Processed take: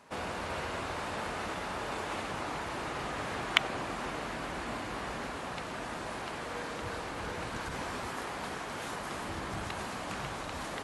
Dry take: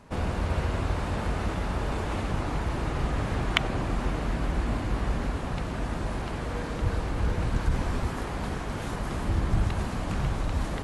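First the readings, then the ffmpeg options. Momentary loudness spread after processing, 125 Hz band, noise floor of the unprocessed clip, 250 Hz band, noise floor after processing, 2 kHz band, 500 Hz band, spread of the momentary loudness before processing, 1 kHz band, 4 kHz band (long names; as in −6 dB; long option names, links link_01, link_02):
2 LU, −16.5 dB, −34 dBFS, −9.5 dB, −40 dBFS, −0.5 dB, −4.5 dB, 5 LU, −2.0 dB, 0.0 dB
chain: -af "highpass=frequency=670:poles=1"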